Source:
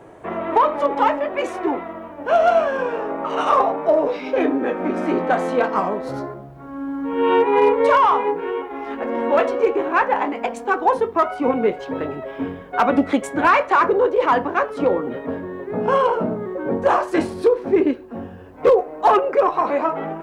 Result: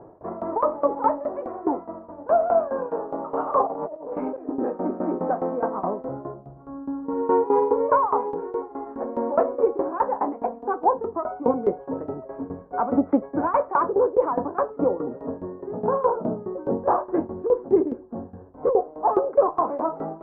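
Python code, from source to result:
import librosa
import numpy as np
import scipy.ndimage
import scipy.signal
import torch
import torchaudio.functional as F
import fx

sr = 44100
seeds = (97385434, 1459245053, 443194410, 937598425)

y = scipy.signal.sosfilt(scipy.signal.butter(4, 1100.0, 'lowpass', fs=sr, output='sos'), x)
y = fx.tremolo_shape(y, sr, shape='saw_down', hz=4.8, depth_pct=85)
y = fx.over_compress(y, sr, threshold_db=-33.0, ratio=-1.0, at=(3.67, 4.49))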